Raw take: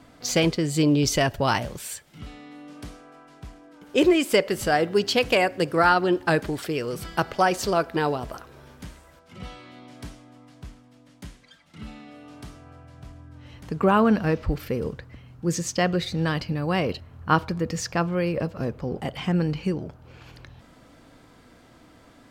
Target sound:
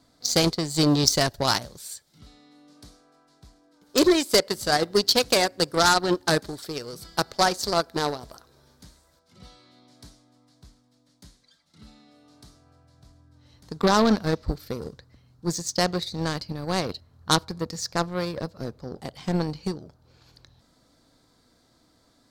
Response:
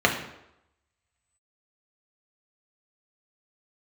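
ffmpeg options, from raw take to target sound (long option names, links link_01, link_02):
-af "aeval=exprs='0.473*(cos(1*acos(clip(val(0)/0.473,-1,1)))-cos(1*PI/2))+0.0473*(cos(3*acos(clip(val(0)/0.473,-1,1)))-cos(3*PI/2))+0.237*(cos(5*acos(clip(val(0)/0.473,-1,1)))-cos(5*PI/2))+0.188*(cos(7*acos(clip(val(0)/0.473,-1,1)))-cos(7*PI/2))':channel_layout=same,highshelf=frequency=3400:width_type=q:width=3:gain=6,volume=-3.5dB"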